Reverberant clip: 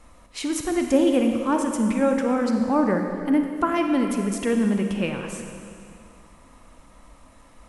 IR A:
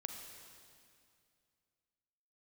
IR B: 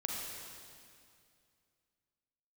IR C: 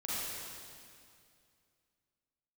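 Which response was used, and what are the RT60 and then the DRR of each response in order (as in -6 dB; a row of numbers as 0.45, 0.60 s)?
A; 2.3, 2.3, 2.3 s; 3.5, -2.0, -9.0 dB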